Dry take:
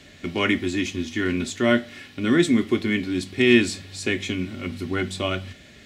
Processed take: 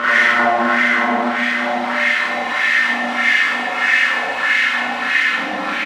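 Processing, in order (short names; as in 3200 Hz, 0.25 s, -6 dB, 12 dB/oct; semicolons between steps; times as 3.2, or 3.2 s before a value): comb 3.9 ms, depth 92%; Paulstretch 16×, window 0.25 s, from 1.77; power-law curve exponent 0.35; wah 1.6 Hz 730–2000 Hz, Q 3.8; in parallel at -4.5 dB: soft clip -20 dBFS, distortion -18 dB; on the sum: Schroeder reverb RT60 0.98 s, combs from 33 ms, DRR -8 dB; gain +1 dB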